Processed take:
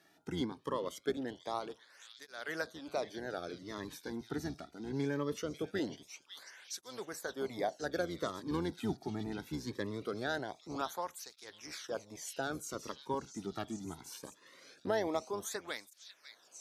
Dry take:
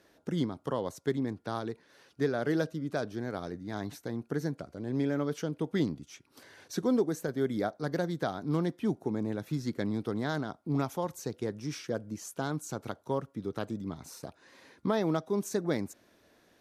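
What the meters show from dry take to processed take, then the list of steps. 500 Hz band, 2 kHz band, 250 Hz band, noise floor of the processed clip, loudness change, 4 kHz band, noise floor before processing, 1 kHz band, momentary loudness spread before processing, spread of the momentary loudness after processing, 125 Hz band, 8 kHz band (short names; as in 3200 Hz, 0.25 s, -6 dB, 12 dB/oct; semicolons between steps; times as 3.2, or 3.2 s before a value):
-5.5 dB, -1.0 dB, -8.5 dB, -66 dBFS, -6.0 dB, 0.0 dB, -65 dBFS, -2.5 dB, 9 LU, 13 LU, -10.5 dB, -0.5 dB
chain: octaver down 1 oct, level -1 dB; low shelf 360 Hz -12 dB; delay with a stepping band-pass 0.545 s, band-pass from 3400 Hz, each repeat 0.7 oct, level -5 dB; tape flanging out of phase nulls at 0.22 Hz, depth 2 ms; gain +2 dB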